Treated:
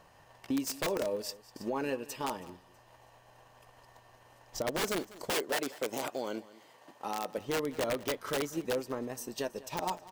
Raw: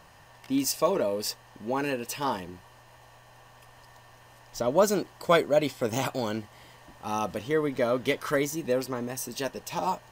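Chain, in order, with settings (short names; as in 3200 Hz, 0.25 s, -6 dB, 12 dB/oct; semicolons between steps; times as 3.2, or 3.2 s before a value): thin delay 0.324 s, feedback 32%, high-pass 2900 Hz, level -17.5 dB; wrapped overs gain 18 dB; bell 460 Hz +5 dB 2.1 oct; transient shaper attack +8 dB, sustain -3 dB; limiter -16 dBFS, peak gain reduction 10 dB; 5.3–7.38 HPF 240 Hz 12 dB/oct; echo 0.197 s -19 dB; gain -8 dB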